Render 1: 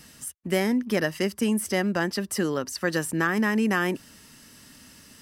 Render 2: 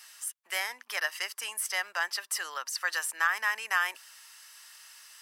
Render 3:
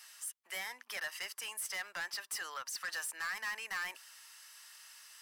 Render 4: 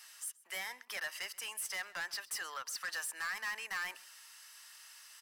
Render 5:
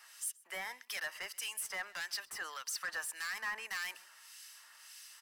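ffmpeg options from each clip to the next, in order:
-af "highpass=f=900:w=0.5412,highpass=f=900:w=1.3066"
-af "asoftclip=type=tanh:threshold=-30.5dB,volume=-3.5dB"
-af "aecho=1:1:129:0.075"
-filter_complex "[0:a]acrossover=split=2000[a][b];[a]aeval=exprs='val(0)*(1-0.7/2+0.7/2*cos(2*PI*1.7*n/s))':c=same[c];[b]aeval=exprs='val(0)*(1-0.7/2-0.7/2*cos(2*PI*1.7*n/s))':c=same[d];[c][d]amix=inputs=2:normalize=0,volume=3.5dB"

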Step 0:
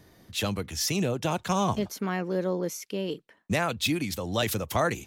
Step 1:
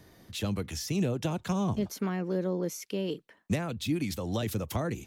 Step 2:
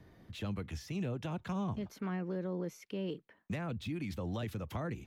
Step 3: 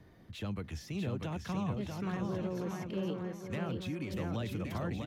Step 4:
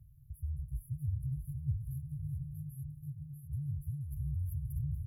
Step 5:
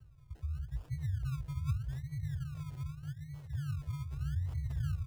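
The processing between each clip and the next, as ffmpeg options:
-filter_complex "[0:a]acrossover=split=410[a][b];[b]acompressor=threshold=-36dB:ratio=6[c];[a][c]amix=inputs=2:normalize=0"
-filter_complex "[0:a]bass=f=250:g=4,treble=f=4k:g=-13,acrossover=split=810|2100[a][b][c];[a]alimiter=level_in=2dB:limit=-24dB:level=0:latency=1:release=177,volume=-2dB[d];[c]aeval=exprs='clip(val(0),-1,0.0112)':c=same[e];[d][b][e]amix=inputs=3:normalize=0,volume=-4.5dB"
-af "aecho=1:1:640|1120|1480|1750|1952:0.631|0.398|0.251|0.158|0.1"
-af "afftfilt=real='re*(1-between(b*sr/4096,180,10000))':imag='im*(1-between(b*sr/4096,180,10000))':win_size=4096:overlap=0.75,afreqshift=-25,equalizer=f=6.9k:w=1.4:g=5,volume=4dB"
-filter_complex "[0:a]acrossover=split=120[a][b];[a]aecho=1:1:481:0.596[c];[b]acrusher=samples=30:mix=1:aa=0.000001:lfo=1:lforange=18:lforate=0.82[d];[c][d]amix=inputs=2:normalize=0"

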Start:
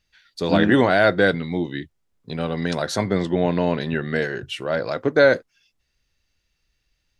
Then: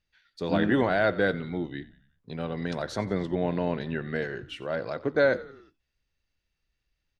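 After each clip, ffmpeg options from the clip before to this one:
-filter_complex "[0:a]aemphasis=mode=reproduction:type=cd,asplit=5[a][b][c][d][e];[b]adelay=90,afreqshift=-49,volume=-18.5dB[f];[c]adelay=180,afreqshift=-98,volume=-24.2dB[g];[d]adelay=270,afreqshift=-147,volume=-29.9dB[h];[e]adelay=360,afreqshift=-196,volume=-35.5dB[i];[a][f][g][h][i]amix=inputs=5:normalize=0,volume=-7.5dB"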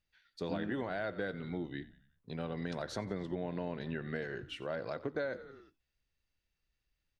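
-af "acompressor=threshold=-29dB:ratio=6,volume=-4.5dB"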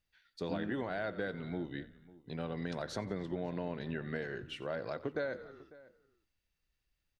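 -filter_complex "[0:a]asplit=2[a][b];[b]adelay=548.1,volume=-20dB,highshelf=f=4k:g=-12.3[c];[a][c]amix=inputs=2:normalize=0"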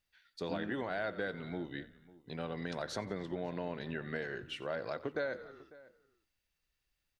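-af "lowshelf=f=380:g=-5.5,volume=2dB"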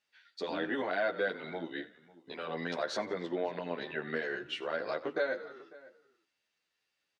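-filter_complex "[0:a]highpass=280,lowpass=6.3k,asplit=2[a][b];[b]adelay=10.7,afreqshift=2[c];[a][c]amix=inputs=2:normalize=1,volume=8dB"

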